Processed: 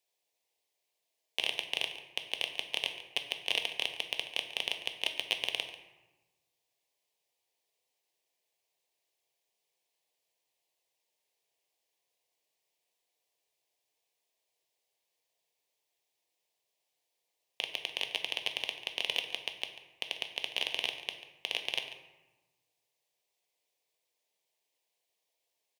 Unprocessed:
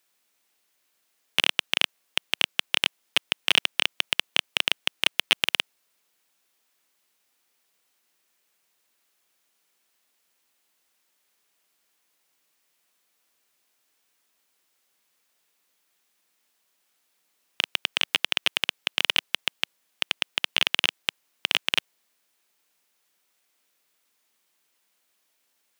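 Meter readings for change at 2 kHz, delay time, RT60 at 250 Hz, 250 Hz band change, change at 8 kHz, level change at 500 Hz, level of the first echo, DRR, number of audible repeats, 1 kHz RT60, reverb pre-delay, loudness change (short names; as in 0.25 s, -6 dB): -10.5 dB, 0.142 s, 1.5 s, -13.5 dB, -11.0 dB, -5.0 dB, -14.5 dB, 5.0 dB, 1, 1.2 s, 4 ms, -9.5 dB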